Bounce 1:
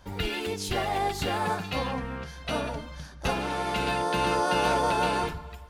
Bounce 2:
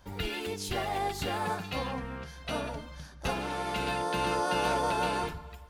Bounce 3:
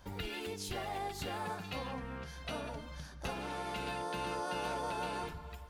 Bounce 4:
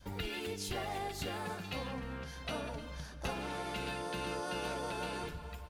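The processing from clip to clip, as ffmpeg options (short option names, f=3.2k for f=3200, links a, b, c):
-af "highshelf=f=12k:g=4.5,volume=-4dB"
-af "acompressor=threshold=-42dB:ratio=2"
-af "adynamicequalizer=threshold=0.00251:dfrequency=910:dqfactor=1.5:tfrequency=910:tqfactor=1.5:attack=5:release=100:ratio=0.375:range=3:mode=cutabove:tftype=bell,aecho=1:1:303|606|909|1212:0.133|0.0587|0.0258|0.0114,volume=1.5dB"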